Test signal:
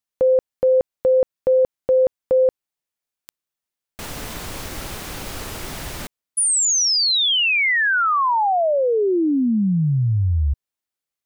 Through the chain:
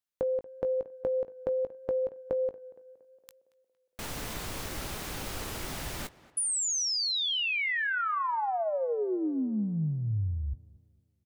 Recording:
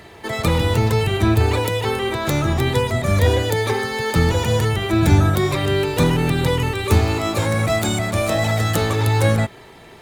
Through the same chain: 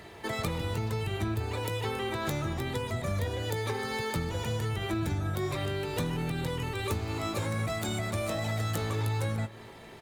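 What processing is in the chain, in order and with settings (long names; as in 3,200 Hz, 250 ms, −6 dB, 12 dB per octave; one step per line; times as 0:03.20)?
downward compressor 6 to 1, threshold −23 dBFS
double-tracking delay 19 ms −12.5 dB
on a send: tape delay 231 ms, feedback 55%, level −18 dB, low-pass 2,600 Hz
on the sum: level −6 dB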